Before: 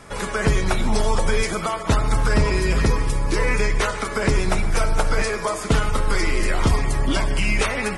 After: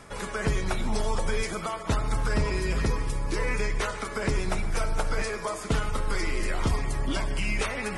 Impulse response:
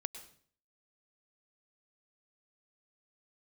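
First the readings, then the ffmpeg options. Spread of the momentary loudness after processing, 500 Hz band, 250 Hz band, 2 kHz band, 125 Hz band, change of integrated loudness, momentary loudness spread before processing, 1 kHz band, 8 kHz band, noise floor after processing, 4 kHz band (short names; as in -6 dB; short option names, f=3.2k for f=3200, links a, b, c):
3 LU, -7.5 dB, -7.5 dB, -7.5 dB, -7.5 dB, -7.5 dB, 3 LU, -7.5 dB, -7.5 dB, -37 dBFS, -7.5 dB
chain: -af "areverse,acompressor=mode=upward:threshold=-23dB:ratio=2.5,areverse,volume=-7.5dB"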